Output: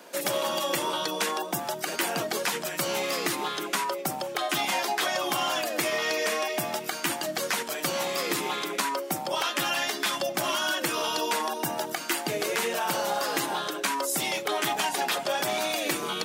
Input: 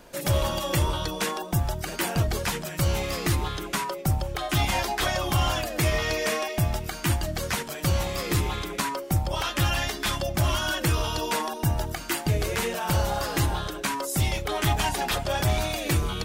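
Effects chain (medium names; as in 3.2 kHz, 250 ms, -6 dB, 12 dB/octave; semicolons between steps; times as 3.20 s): Bessel high-pass 310 Hz, order 8; compression, threshold -27 dBFS, peak gain reduction 5 dB; trim +3.5 dB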